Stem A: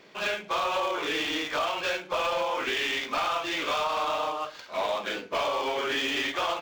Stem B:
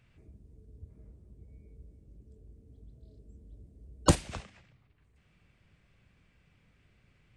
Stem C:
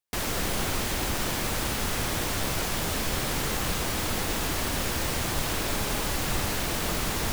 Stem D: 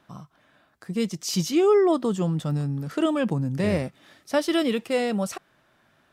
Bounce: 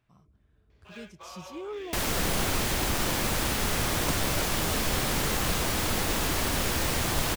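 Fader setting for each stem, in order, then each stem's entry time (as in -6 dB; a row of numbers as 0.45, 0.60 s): -18.5, -10.5, +1.0, -19.5 dB; 0.70, 0.00, 1.80, 0.00 s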